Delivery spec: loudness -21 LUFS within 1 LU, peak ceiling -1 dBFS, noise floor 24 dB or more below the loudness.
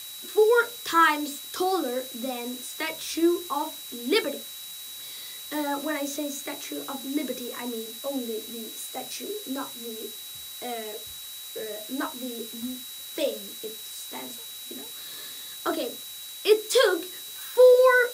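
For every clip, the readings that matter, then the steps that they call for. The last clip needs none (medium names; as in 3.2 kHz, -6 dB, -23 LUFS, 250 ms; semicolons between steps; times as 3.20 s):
steady tone 3.9 kHz; tone level -41 dBFS; noise floor -40 dBFS; noise floor target -52 dBFS; loudness -27.5 LUFS; peak level -7.5 dBFS; loudness target -21.0 LUFS
-> band-stop 3.9 kHz, Q 30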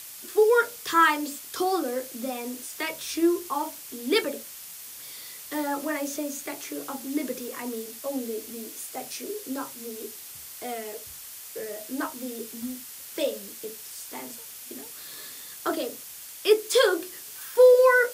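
steady tone not found; noise floor -43 dBFS; noise floor target -51 dBFS
-> noise print and reduce 8 dB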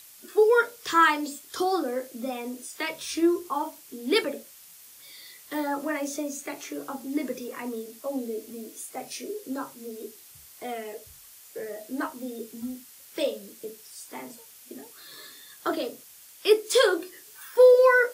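noise floor -50 dBFS; noise floor target -51 dBFS
-> noise print and reduce 6 dB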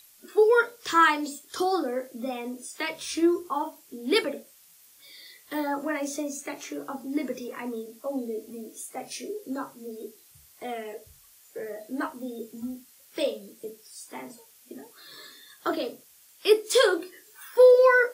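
noise floor -56 dBFS; loudness -26.5 LUFS; peak level -7.5 dBFS; loudness target -21.0 LUFS
-> trim +5.5 dB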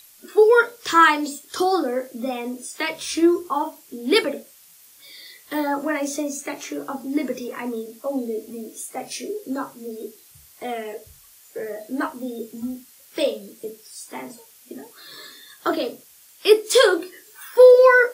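loudness -21.0 LUFS; peak level -2.0 dBFS; noise floor -51 dBFS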